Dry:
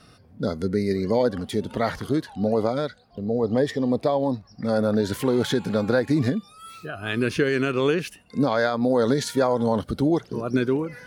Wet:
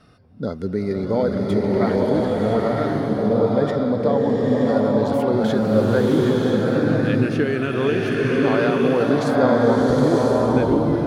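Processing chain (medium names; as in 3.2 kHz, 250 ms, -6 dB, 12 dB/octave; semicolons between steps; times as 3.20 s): treble shelf 3.5 kHz -11 dB; swelling reverb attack 990 ms, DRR -4 dB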